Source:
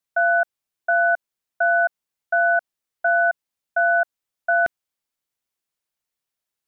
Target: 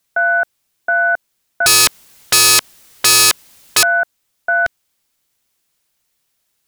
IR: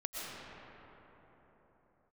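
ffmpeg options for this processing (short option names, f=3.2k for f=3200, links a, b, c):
-filter_complex "[0:a]asettb=1/sr,asplit=3[a][b][c];[a]atrim=end=1.664[d];[b]atrim=start=1.66:end=3.83,asetpts=PTS-STARTPTS,afade=t=in:d=0.004:c=qsin,afade=t=out:st=2.166:d=0.004:c=qsin,aeval=exprs='0.266*sin(PI/2*7.08*val(0)/0.266)':c=same[e];[c]atrim=start=3.826[f];[d][e]acrossfade=d=0.004:c1=hsin:c2=qsin[g];[g][f]acrossfade=d=0.004:c1=qsin:c2=hsin,equalizer=f=800:w=0.36:g=-4,apsyclip=26.5dB,volume=-9dB"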